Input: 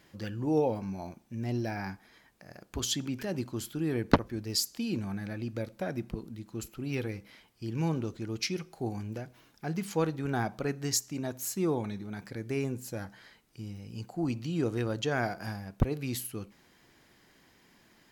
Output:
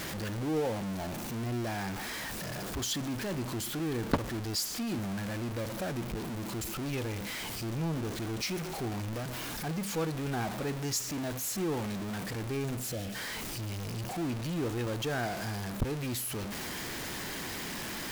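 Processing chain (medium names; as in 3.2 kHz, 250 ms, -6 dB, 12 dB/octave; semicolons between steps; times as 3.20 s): jump at every zero crossing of -25.5 dBFS; spectral replace 12.93–13.13 s, 760–3500 Hz before; trim -7 dB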